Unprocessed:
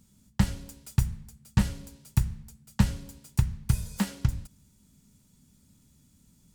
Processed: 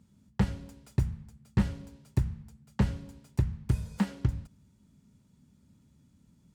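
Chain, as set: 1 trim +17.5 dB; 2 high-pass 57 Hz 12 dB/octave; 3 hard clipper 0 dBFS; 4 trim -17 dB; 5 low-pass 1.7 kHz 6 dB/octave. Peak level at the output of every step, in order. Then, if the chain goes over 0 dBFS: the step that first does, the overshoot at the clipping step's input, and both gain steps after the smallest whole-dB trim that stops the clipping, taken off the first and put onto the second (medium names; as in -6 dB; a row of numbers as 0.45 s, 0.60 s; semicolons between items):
+10.0 dBFS, +9.0 dBFS, 0.0 dBFS, -17.0 dBFS, -17.0 dBFS; step 1, 9.0 dB; step 1 +8.5 dB, step 4 -8 dB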